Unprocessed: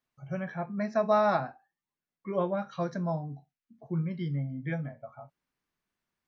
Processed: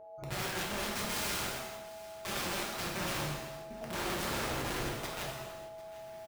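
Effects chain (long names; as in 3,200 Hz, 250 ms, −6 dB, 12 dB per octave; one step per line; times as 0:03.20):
camcorder AGC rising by 20 dB per second
0:00.65–0:01.39: low-shelf EQ 370 Hz −3.5 dB
0:03.24–0:03.93: downward compressor 20 to 1, threshold −38 dBFS, peak gain reduction 16.5 dB
steady tone 650 Hz −45 dBFS
0:04.47–0:04.97: phaser with its sweep stopped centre 1,700 Hz, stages 6
amplitude modulation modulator 190 Hz, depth 65%
wrap-around overflow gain 32.5 dB
single-tap delay 749 ms −19 dB
reverb whose tail is shaped and stops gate 480 ms falling, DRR −3 dB
level −2 dB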